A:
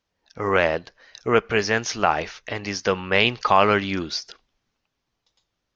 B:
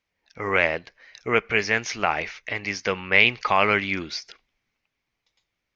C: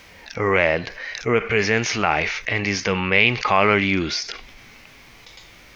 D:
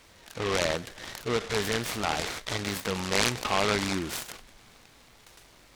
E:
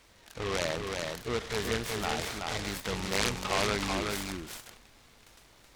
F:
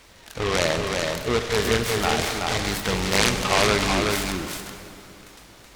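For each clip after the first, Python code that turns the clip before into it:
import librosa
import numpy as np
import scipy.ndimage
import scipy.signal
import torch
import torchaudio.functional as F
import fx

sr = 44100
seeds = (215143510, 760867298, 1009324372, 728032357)

y1 = fx.peak_eq(x, sr, hz=2200.0, db=12.0, octaves=0.51)
y1 = y1 * 10.0 ** (-4.5 / 20.0)
y2 = fx.hpss(y1, sr, part='percussive', gain_db=-10)
y2 = fx.env_flatten(y2, sr, amount_pct=50)
y2 = y2 * 10.0 ** (5.0 / 20.0)
y3 = fx.noise_mod_delay(y2, sr, seeds[0], noise_hz=1600.0, depth_ms=0.1)
y3 = y3 * 10.0 ** (-9.0 / 20.0)
y4 = fx.octave_divider(y3, sr, octaves=2, level_db=-6.0)
y4 = y4 + 10.0 ** (-4.0 / 20.0) * np.pad(y4, (int(376 * sr / 1000.0), 0))[:len(y4)]
y4 = y4 * 10.0 ** (-4.5 / 20.0)
y5 = fx.rev_plate(y4, sr, seeds[1], rt60_s=3.0, hf_ratio=0.8, predelay_ms=0, drr_db=8.0)
y5 = y5 * 10.0 ** (9.0 / 20.0)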